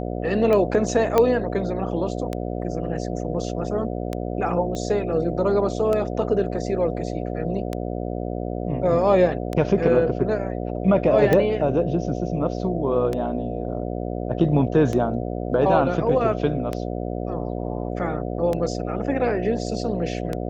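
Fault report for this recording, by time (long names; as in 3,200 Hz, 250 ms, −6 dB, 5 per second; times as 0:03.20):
mains buzz 60 Hz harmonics 12 −28 dBFS
scratch tick 33 1/3 rpm −13 dBFS
0:01.18: click −6 dBFS
0:04.75: click −18 dBFS
0:11.33: click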